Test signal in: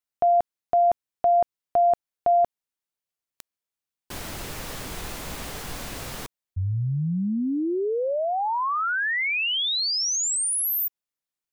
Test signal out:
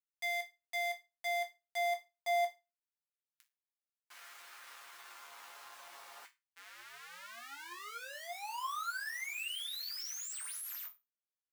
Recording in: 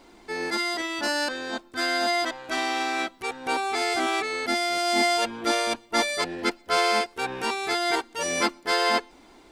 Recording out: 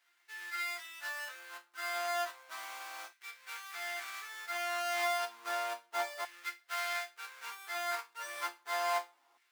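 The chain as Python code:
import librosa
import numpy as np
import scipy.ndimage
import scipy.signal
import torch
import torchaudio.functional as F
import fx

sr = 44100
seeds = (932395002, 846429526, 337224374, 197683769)

y = fx.halfwave_hold(x, sr)
y = fx.resonator_bank(y, sr, root=46, chord='minor', decay_s=0.23)
y = fx.filter_lfo_highpass(y, sr, shape='saw_down', hz=0.32, low_hz=890.0, high_hz=1800.0, q=1.7)
y = y * librosa.db_to_amplitude(-8.5)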